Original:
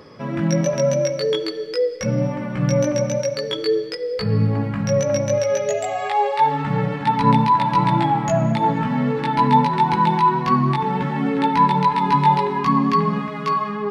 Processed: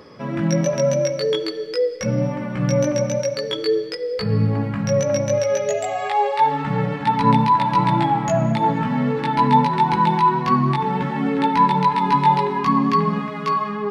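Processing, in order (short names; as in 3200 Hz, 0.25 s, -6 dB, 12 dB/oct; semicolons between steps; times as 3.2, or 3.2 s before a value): notches 50/100/150 Hz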